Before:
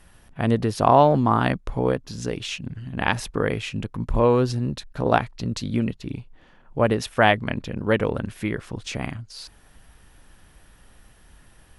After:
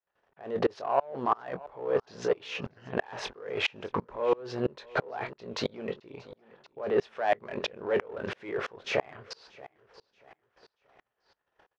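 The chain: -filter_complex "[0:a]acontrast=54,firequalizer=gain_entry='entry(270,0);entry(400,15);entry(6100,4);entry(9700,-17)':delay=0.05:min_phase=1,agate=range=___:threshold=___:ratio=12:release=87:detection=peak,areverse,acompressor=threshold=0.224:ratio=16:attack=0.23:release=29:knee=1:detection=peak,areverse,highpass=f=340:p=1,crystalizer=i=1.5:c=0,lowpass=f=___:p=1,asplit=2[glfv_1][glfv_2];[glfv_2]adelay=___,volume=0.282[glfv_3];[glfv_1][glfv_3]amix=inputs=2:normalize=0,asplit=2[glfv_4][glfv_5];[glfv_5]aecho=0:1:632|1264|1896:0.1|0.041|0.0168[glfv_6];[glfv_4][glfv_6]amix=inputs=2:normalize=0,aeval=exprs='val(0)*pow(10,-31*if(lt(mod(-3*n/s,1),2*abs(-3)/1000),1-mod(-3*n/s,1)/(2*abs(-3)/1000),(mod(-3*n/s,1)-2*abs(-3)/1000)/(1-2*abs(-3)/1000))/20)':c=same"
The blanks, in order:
0.0562, 0.0141, 1200, 22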